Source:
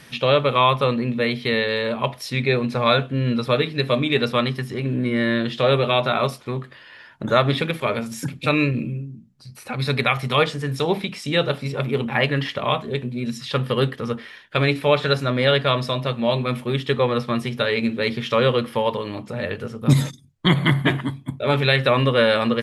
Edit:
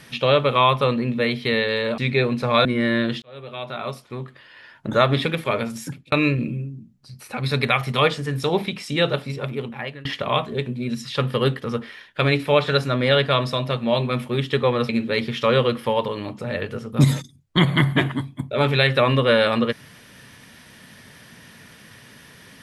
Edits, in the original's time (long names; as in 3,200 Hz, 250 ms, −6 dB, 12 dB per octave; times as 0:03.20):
0:01.98–0:02.30: remove
0:02.97–0:05.01: remove
0:05.58–0:07.25: fade in
0:08.10–0:08.48: fade out
0:11.44–0:12.41: fade out, to −21.5 dB
0:17.25–0:17.78: remove